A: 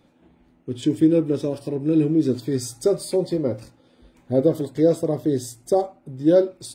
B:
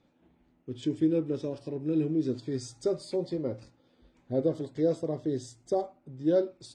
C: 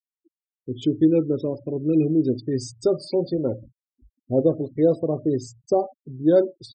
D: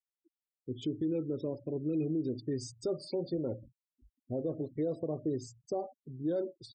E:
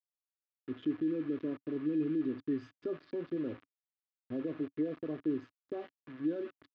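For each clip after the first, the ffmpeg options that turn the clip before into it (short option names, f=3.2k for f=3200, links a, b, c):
-af "lowpass=f=7.3k:w=0.5412,lowpass=f=7.3k:w=1.3066,volume=-9dB"
-af "afftfilt=real='re*gte(hypot(re,im),0.00708)':imag='im*gte(hypot(re,im),0.00708)':win_size=1024:overlap=0.75,volume=8dB"
-af "alimiter=limit=-17dB:level=0:latency=1:release=75,volume=-8.5dB"
-af "aeval=exprs='val(0)+0.00112*sin(2*PI*1700*n/s)':c=same,aeval=exprs='val(0)*gte(abs(val(0)),0.00668)':c=same,highpass=110,equalizer=f=130:t=q:w=4:g=-5,equalizer=f=190:t=q:w=4:g=-5,equalizer=f=280:t=q:w=4:g=9,equalizer=f=560:t=q:w=4:g=-6,equalizer=f=830:t=q:w=4:g=-9,equalizer=f=1.2k:t=q:w=4:g=5,lowpass=f=3.2k:w=0.5412,lowpass=f=3.2k:w=1.3066,volume=-3dB"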